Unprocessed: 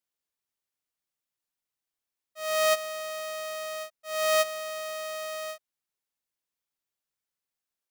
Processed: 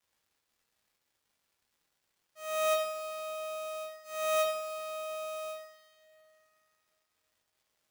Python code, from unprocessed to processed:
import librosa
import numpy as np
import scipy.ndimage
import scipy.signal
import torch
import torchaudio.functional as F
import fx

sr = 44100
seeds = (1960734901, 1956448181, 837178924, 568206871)

y = fx.dmg_crackle(x, sr, seeds[0], per_s=440.0, level_db=-57.0)
y = fx.rev_double_slope(y, sr, seeds[1], early_s=0.59, late_s=3.4, knee_db=-19, drr_db=0.5)
y = y * 10.0 ** (-8.5 / 20.0)